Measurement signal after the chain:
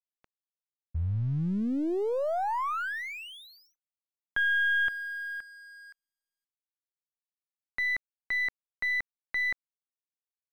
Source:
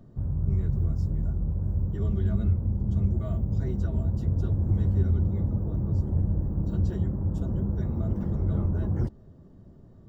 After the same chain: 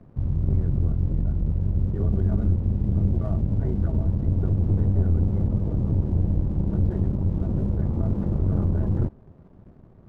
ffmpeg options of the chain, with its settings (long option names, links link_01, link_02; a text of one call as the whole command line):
ffmpeg -i in.wav -af "lowpass=1400,aeval=exprs='(tanh(12.6*val(0)+0.55)-tanh(0.55))/12.6':channel_layout=same,aeval=exprs='sgn(val(0))*max(abs(val(0))-0.00106,0)':channel_layout=same,volume=7dB" out.wav